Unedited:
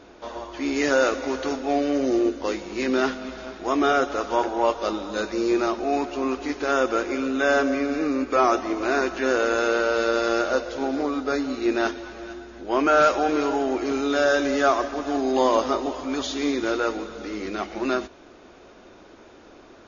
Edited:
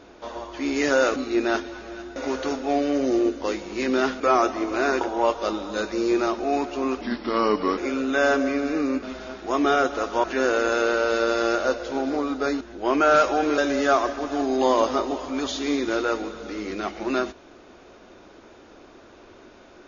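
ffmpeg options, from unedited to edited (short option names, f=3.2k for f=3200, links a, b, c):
-filter_complex "[0:a]asplit=11[a][b][c][d][e][f][g][h][i][j][k];[a]atrim=end=1.162[l];[b]atrim=start=11.468:end=12.472[m];[c]atrim=start=1.158:end=3.202[n];[d]atrim=start=8.288:end=9.102[o];[e]atrim=start=4.408:end=6.414[p];[f]atrim=start=6.41:end=7.04,asetpts=PTS-STARTPTS,asetrate=36162,aresample=44100[q];[g]atrim=start=7.036:end=8.292[r];[h]atrim=start=3.198:end=4.412[s];[i]atrim=start=9.098:end=11.472[t];[j]atrim=start=12.468:end=13.442[u];[k]atrim=start=14.328[v];[l][m]acrossfade=d=0.004:c1=hsin:c2=hsin[w];[w][n]acrossfade=d=0.004:c1=hsin:c2=hsin[x];[x][o]acrossfade=d=0.004:c1=hsin:c2=hsin[y];[y][p]acrossfade=d=0.004:c1=hsin:c2=hsin[z];[z][q]acrossfade=d=0.004:c1=hsin:c2=hsin[aa];[aa][r]acrossfade=d=0.004:c1=hsin:c2=hsin[ab];[ab][s]acrossfade=d=0.004:c1=hsin:c2=hsin[ac];[ac][t]acrossfade=d=0.004:c1=hsin:c2=hsin[ad];[ad][u]acrossfade=d=0.004:c1=hsin:c2=hsin[ae];[ae][v]acrossfade=d=0.004:c1=hsin:c2=hsin"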